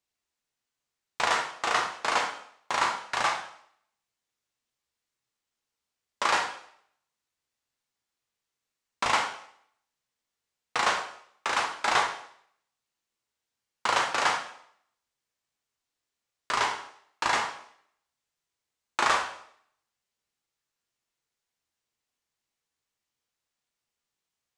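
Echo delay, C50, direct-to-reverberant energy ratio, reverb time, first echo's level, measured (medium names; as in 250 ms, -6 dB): no echo, 7.0 dB, 1.5 dB, 0.65 s, no echo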